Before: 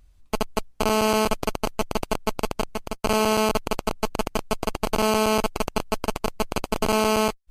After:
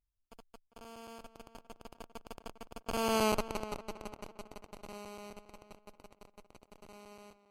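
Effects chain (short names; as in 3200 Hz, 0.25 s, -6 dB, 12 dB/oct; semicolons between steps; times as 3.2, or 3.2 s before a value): Doppler pass-by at 3.25, 18 m/s, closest 3.5 m; tape echo 0.401 s, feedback 36%, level -12.5 dB, low-pass 2600 Hz; gain -7.5 dB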